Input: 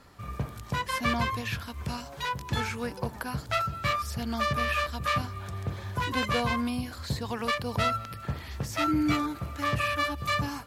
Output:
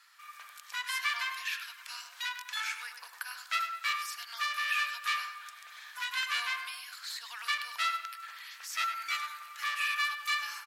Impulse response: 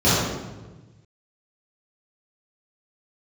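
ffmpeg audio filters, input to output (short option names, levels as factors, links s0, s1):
-filter_complex "[0:a]highpass=f=1400:w=0.5412,highpass=f=1400:w=1.3066,asplit=2[s0][s1];[s1]adelay=100,lowpass=f=2600:p=1,volume=0.447,asplit=2[s2][s3];[s3]adelay=100,lowpass=f=2600:p=1,volume=0.5,asplit=2[s4][s5];[s5]adelay=100,lowpass=f=2600:p=1,volume=0.5,asplit=2[s6][s7];[s7]adelay=100,lowpass=f=2600:p=1,volume=0.5,asplit=2[s8][s9];[s9]adelay=100,lowpass=f=2600:p=1,volume=0.5,asplit=2[s10][s11];[s11]adelay=100,lowpass=f=2600:p=1,volume=0.5[s12];[s0][s2][s4][s6][s8][s10][s12]amix=inputs=7:normalize=0"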